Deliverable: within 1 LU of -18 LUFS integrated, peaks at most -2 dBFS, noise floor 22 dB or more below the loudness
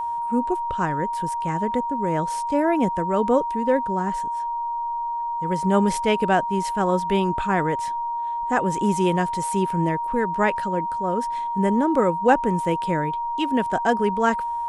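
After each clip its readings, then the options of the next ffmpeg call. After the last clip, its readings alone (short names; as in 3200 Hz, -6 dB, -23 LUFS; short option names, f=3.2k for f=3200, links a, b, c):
steady tone 940 Hz; tone level -24 dBFS; loudness -23.0 LUFS; peak -4.0 dBFS; loudness target -18.0 LUFS
-> -af "bandreject=f=940:w=30"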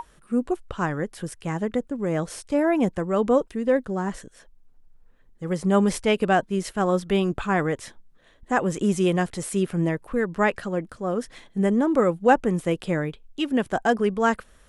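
steady tone none; loudness -24.5 LUFS; peak -4.5 dBFS; loudness target -18.0 LUFS
-> -af "volume=6.5dB,alimiter=limit=-2dB:level=0:latency=1"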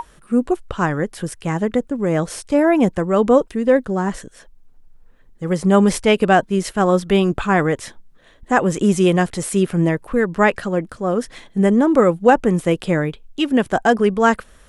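loudness -18.0 LUFS; peak -2.0 dBFS; noise floor -49 dBFS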